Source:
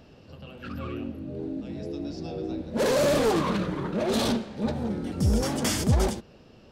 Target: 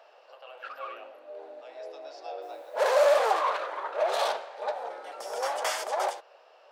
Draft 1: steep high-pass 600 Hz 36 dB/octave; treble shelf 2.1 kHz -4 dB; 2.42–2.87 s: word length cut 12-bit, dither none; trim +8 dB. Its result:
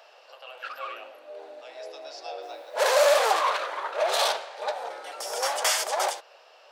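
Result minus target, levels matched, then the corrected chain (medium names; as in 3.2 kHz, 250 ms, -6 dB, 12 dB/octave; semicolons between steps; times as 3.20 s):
4 kHz band +5.5 dB
steep high-pass 600 Hz 36 dB/octave; treble shelf 2.1 kHz -15.5 dB; 2.42–2.87 s: word length cut 12-bit, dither none; trim +8 dB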